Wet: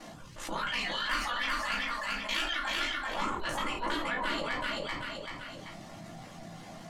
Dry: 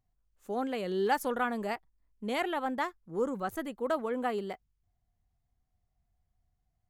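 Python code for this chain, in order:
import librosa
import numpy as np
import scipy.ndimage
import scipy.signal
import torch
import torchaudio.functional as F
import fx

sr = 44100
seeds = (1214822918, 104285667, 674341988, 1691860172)

y = fx.spec_gate(x, sr, threshold_db=-15, keep='weak')
y = scipy.signal.sosfilt(scipy.signal.butter(2, 6800.0, 'lowpass', fs=sr, output='sos'), y)
y = fx.dereverb_blind(y, sr, rt60_s=0.63)
y = fx.highpass(y, sr, hz=780.0, slope=24, at=(0.6, 2.75))
y = fx.dereverb_blind(y, sr, rt60_s=0.64)
y = fx.cheby_harmonics(y, sr, harmonics=(8,), levels_db=(-22,), full_scale_db=-22.5)
y = y * np.sin(2.0 * np.pi * 28.0 * np.arange(len(y)) / sr)
y = fx.echo_feedback(y, sr, ms=385, feedback_pct=16, wet_db=-5)
y = fx.room_shoebox(y, sr, seeds[0], volume_m3=120.0, walls='furnished', distance_m=2.5)
y = fx.env_flatten(y, sr, amount_pct=70)
y = y * 10.0 ** (2.5 / 20.0)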